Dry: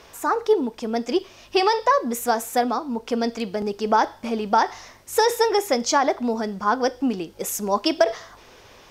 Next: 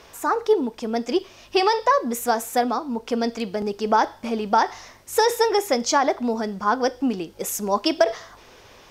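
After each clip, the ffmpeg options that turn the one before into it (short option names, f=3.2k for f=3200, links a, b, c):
-af anull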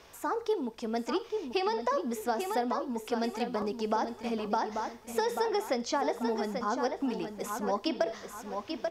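-filter_complex "[0:a]asplit=2[a][b];[b]adelay=837,lowpass=f=4.5k:p=1,volume=-8dB,asplit=2[c][d];[d]adelay=837,lowpass=f=4.5k:p=1,volume=0.35,asplit=2[e][f];[f]adelay=837,lowpass=f=4.5k:p=1,volume=0.35,asplit=2[g][h];[h]adelay=837,lowpass=f=4.5k:p=1,volume=0.35[i];[a][c][e][g][i]amix=inputs=5:normalize=0,acrossover=split=740|4600[j][k][l];[j]acompressor=threshold=-21dB:ratio=4[m];[k]acompressor=threshold=-27dB:ratio=4[n];[l]acompressor=threshold=-41dB:ratio=4[o];[m][n][o]amix=inputs=3:normalize=0,volume=-7dB"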